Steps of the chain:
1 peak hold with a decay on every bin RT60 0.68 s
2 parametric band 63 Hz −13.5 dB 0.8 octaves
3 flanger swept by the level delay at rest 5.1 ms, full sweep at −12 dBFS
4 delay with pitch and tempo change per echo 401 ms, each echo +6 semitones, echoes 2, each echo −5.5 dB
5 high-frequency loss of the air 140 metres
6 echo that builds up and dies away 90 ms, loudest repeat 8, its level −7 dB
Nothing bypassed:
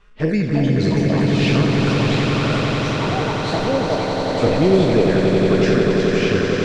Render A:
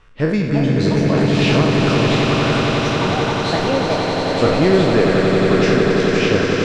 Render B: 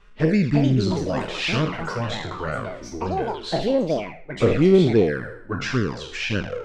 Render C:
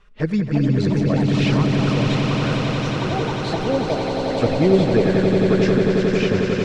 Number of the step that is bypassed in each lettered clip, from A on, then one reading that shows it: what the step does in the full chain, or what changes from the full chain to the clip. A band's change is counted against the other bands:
3, 125 Hz band −2.5 dB
6, echo-to-direct ratio 4.5 dB to none audible
1, 125 Hz band +2.0 dB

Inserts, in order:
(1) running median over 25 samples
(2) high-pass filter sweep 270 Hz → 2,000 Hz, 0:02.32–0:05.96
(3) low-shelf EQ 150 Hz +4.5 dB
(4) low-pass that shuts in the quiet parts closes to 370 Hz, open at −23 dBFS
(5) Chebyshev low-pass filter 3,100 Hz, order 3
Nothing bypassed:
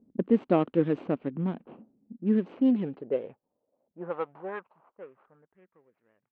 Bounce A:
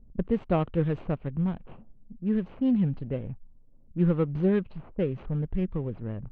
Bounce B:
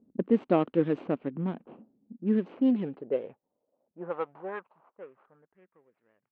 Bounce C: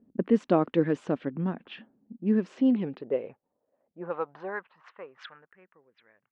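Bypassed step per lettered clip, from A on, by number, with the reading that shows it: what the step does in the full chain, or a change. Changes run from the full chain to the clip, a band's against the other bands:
2, 125 Hz band +9.0 dB
3, 125 Hz band −1.5 dB
1, 2 kHz band +4.0 dB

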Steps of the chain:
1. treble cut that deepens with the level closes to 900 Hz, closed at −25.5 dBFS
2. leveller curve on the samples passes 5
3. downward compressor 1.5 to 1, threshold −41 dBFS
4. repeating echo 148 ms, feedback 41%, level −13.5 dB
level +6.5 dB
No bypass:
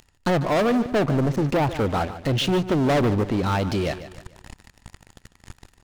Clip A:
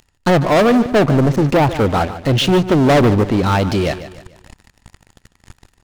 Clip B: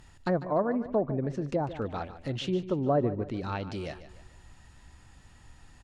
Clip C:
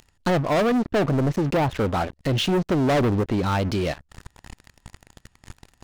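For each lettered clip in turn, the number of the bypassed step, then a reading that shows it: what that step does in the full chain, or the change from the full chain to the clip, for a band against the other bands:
3, average gain reduction 7.0 dB
2, change in crest factor +7.0 dB
4, echo-to-direct ratio −12.5 dB to none audible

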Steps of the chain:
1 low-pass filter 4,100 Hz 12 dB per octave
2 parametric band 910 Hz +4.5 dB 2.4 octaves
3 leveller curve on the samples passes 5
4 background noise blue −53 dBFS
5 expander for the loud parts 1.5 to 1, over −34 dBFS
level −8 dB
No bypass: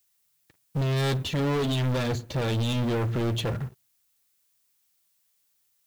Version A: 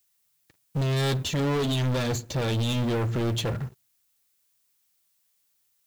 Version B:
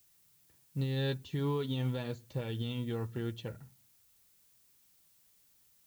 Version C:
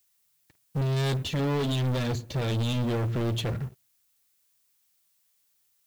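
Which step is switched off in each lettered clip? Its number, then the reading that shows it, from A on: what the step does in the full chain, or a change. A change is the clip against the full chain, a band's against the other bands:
1, 8 kHz band +5.0 dB
3, change in crest factor +9.0 dB
2, change in integrated loudness −1.0 LU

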